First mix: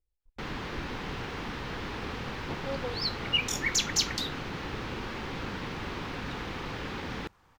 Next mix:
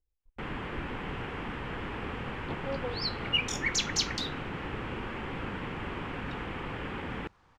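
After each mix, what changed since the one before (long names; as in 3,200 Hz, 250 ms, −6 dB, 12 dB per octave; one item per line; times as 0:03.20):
first sound: add flat-topped bell 4,900 Hz −12.5 dB 1 octave
master: add high-frequency loss of the air 52 metres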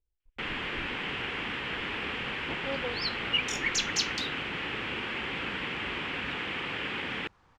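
first sound: add meter weighting curve D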